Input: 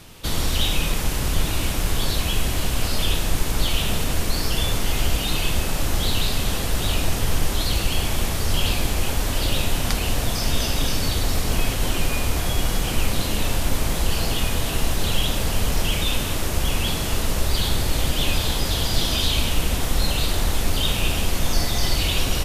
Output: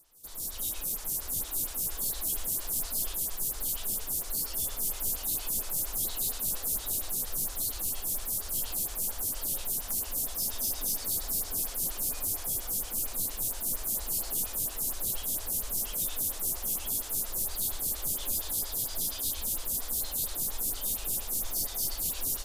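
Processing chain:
automatic gain control gain up to 13 dB
first-order pre-emphasis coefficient 0.9
feedback delay with all-pass diffusion 906 ms, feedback 47%, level −8 dB
flanger 1.3 Hz, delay 2.7 ms, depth 3.2 ms, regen −71%
parametric band 2,600 Hz −13 dB 1.6 octaves
on a send: delay with a high-pass on its return 76 ms, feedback 40%, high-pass 4,400 Hz, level −8 dB
on the sum: floating-point word with a short mantissa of 2 bits
phaser with staggered stages 4.3 Hz

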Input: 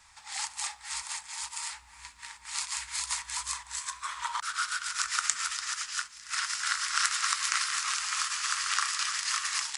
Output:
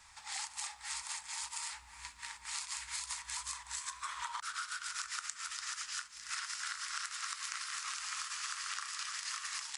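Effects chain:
downward compressor 10 to 1, threshold −36 dBFS, peak gain reduction 16 dB
level −1 dB

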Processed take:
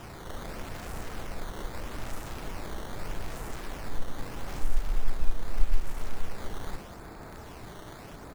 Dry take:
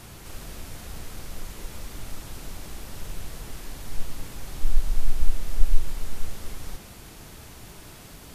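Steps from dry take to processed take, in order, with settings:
adaptive Wiener filter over 15 samples
low-shelf EQ 320 Hz −9 dB
in parallel at −1 dB: downward compressor, threshold −33 dBFS, peak gain reduction 17.5 dB
on the sum: double-tracking delay 34 ms −11.5 dB
sample-and-hold swept by an LFO 10×, swing 160% 0.8 Hz
level +2 dB

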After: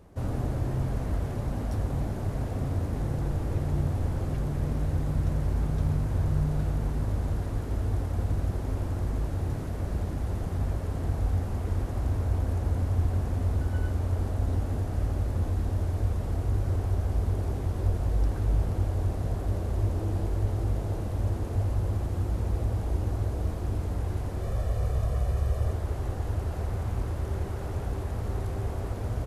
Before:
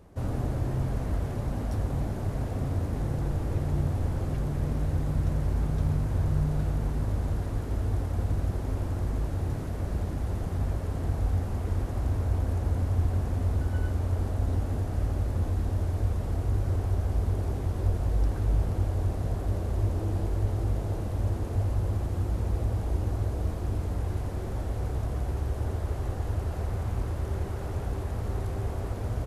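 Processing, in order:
0:24.41–0:25.73: comb filter 1.7 ms, depth 59%

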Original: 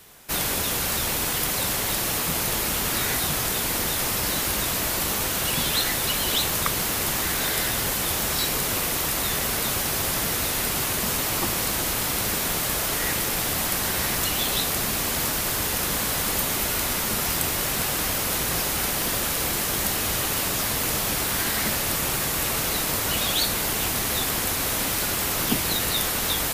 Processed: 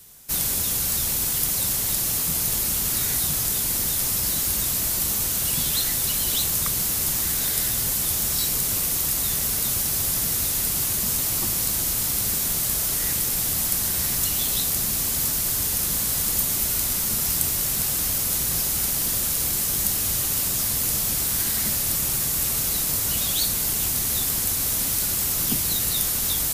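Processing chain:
bass and treble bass +9 dB, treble +13 dB
level −9 dB

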